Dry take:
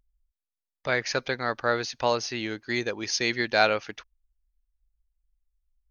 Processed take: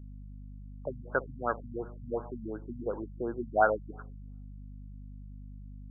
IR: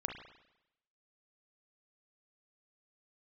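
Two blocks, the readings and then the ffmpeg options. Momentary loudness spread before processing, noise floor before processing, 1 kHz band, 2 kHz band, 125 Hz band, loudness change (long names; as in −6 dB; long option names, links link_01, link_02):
9 LU, below −85 dBFS, −3.5 dB, −10.5 dB, −2.0 dB, −7.0 dB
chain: -filter_complex "[0:a]aemphasis=mode=production:type=bsi,asplit=2[link_01][link_02];[1:a]atrim=start_sample=2205,lowpass=frequency=1100:width=0.5412,lowpass=frequency=1100:width=1.3066,adelay=53[link_03];[link_02][link_03]afir=irnorm=-1:irlink=0,volume=-16.5dB[link_04];[link_01][link_04]amix=inputs=2:normalize=0,aeval=exprs='val(0)+0.00631*(sin(2*PI*50*n/s)+sin(2*PI*2*50*n/s)/2+sin(2*PI*3*50*n/s)/3+sin(2*PI*4*50*n/s)/4+sin(2*PI*5*50*n/s)/5)':channel_layout=same,afftfilt=real='re*lt(b*sr/1024,220*pow(1700/220,0.5+0.5*sin(2*PI*2.8*pts/sr)))':imag='im*lt(b*sr/1024,220*pow(1700/220,0.5+0.5*sin(2*PI*2.8*pts/sr)))':win_size=1024:overlap=0.75"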